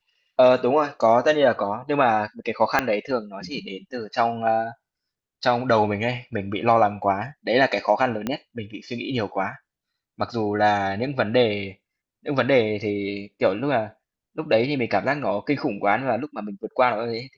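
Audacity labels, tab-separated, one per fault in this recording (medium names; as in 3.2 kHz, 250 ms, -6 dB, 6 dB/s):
2.790000	2.790000	pop -6 dBFS
8.270000	8.270000	pop -12 dBFS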